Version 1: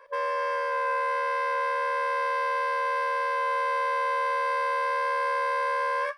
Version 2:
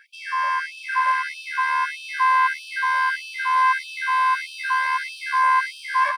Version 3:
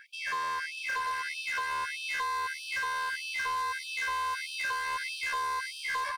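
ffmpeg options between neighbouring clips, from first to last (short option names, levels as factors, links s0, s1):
-af "aecho=1:1:638:0.531,afftfilt=real='re*gte(b*sr/1024,590*pow(2500/590,0.5+0.5*sin(2*PI*1.6*pts/sr)))':imag='im*gte(b*sr/1024,590*pow(2500/590,0.5+0.5*sin(2*PI*1.6*pts/sr)))':win_size=1024:overlap=0.75,volume=2.51"
-filter_complex "[0:a]acrossover=split=4100[s0][s1];[s0]acompressor=threshold=0.0398:ratio=16[s2];[s2][s1]amix=inputs=2:normalize=0,asoftclip=type=hard:threshold=0.0376"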